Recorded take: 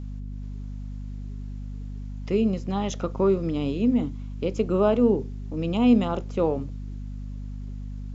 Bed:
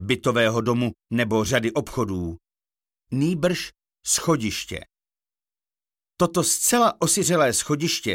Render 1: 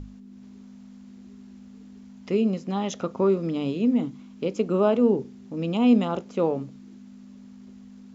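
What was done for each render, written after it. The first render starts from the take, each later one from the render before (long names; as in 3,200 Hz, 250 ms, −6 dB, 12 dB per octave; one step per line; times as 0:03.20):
mains-hum notches 50/100/150 Hz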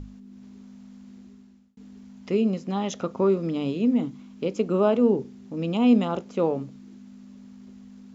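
0:01.17–0:01.77: fade out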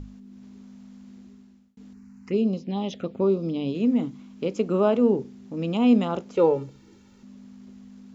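0:01.93–0:03.75: phaser swept by the level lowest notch 530 Hz, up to 1,800 Hz, full sweep at −22 dBFS
0:06.35–0:07.23: comb filter 2.2 ms, depth 97%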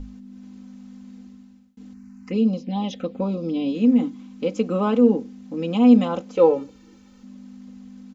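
comb filter 3.9 ms, depth 87%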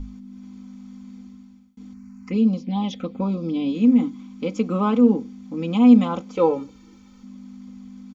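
comb filter 0.9 ms, depth 40%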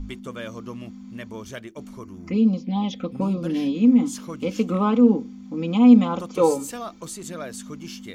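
mix in bed −15.5 dB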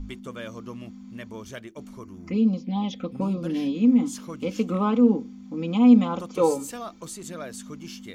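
level −2.5 dB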